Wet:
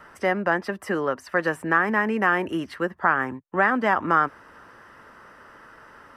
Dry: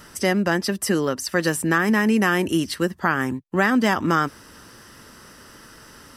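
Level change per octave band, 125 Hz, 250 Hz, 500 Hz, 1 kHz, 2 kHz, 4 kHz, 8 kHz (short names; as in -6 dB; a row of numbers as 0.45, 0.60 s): -8.5 dB, -7.0 dB, -2.0 dB, +2.0 dB, 0.0 dB, -11.5 dB, under -15 dB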